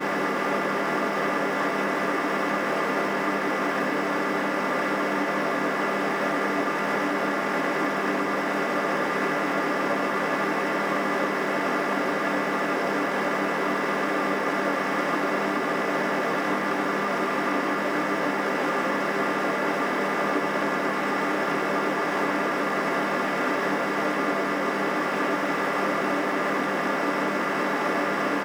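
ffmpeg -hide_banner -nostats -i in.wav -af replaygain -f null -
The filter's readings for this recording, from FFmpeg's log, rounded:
track_gain = +9.6 dB
track_peak = 0.183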